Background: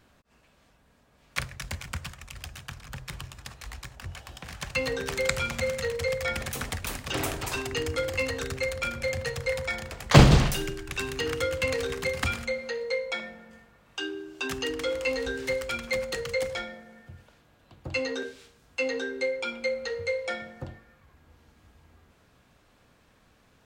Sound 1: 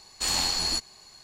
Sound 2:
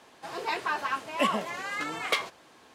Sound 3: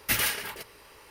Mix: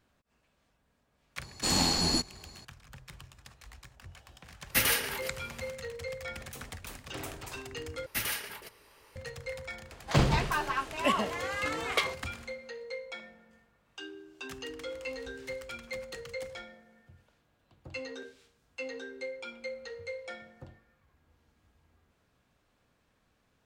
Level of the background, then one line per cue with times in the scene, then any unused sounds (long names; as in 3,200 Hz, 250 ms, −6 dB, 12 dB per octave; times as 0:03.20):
background −10.5 dB
0:01.42: mix in 1 −2.5 dB + parametric band 200 Hz +14 dB 2.9 octaves
0:04.66: mix in 3 −0.5 dB, fades 0.10 s
0:08.06: overwrite with 3 −7 dB
0:09.85: mix in 2 −1.5 dB, fades 0.10 s